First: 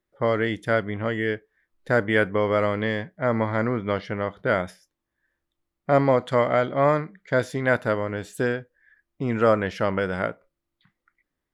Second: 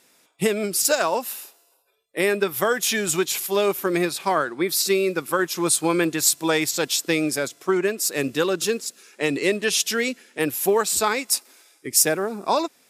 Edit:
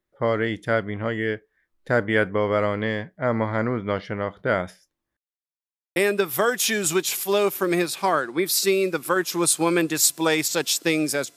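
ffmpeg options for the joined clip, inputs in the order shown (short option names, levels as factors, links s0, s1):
-filter_complex "[0:a]apad=whole_dur=11.36,atrim=end=11.36,asplit=2[s0][s1];[s0]atrim=end=5.17,asetpts=PTS-STARTPTS,afade=t=out:st=5.166:d=0.004:c=hsin[s2];[s1]atrim=start=5.17:end=5.96,asetpts=PTS-STARTPTS,volume=0[s3];[1:a]atrim=start=2.19:end=7.59,asetpts=PTS-STARTPTS,afade=t=in:d=0.004:c=hsin[s4];[s2][s3][s4]concat=n=3:v=0:a=1"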